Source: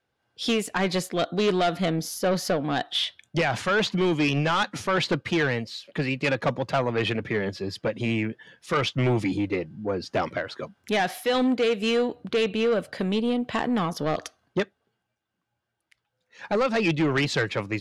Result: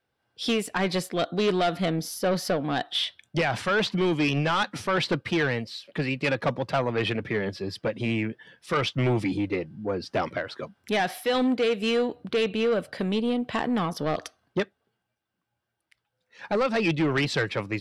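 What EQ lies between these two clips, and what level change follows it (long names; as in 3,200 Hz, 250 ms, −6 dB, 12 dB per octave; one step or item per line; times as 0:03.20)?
notch filter 6,700 Hz, Q 8.8
−1.0 dB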